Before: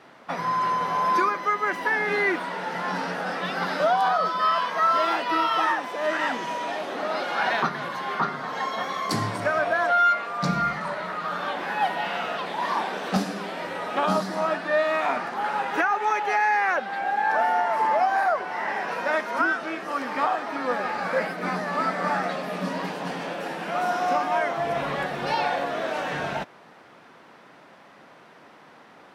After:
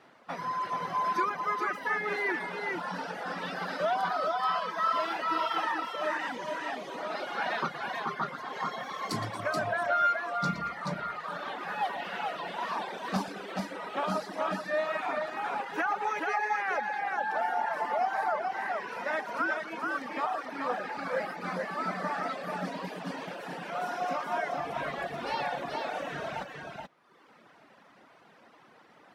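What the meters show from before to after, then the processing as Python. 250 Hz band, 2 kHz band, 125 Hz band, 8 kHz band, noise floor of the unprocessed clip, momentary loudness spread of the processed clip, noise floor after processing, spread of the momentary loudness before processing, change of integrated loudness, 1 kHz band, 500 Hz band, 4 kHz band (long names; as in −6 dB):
−7.0 dB, −7.0 dB, −7.0 dB, −7.0 dB, −51 dBFS, 8 LU, −58 dBFS, 8 LU, −7.0 dB, −7.0 dB, −7.0 dB, −7.0 dB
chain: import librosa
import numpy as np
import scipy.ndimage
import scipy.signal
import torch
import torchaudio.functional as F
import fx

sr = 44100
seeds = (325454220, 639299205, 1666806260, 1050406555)

y = fx.echo_multitap(x, sr, ms=(117, 228, 430), db=(-9.0, -13.5, -3.5))
y = fx.dereverb_blind(y, sr, rt60_s=1.0)
y = y * 10.0 ** (-7.0 / 20.0)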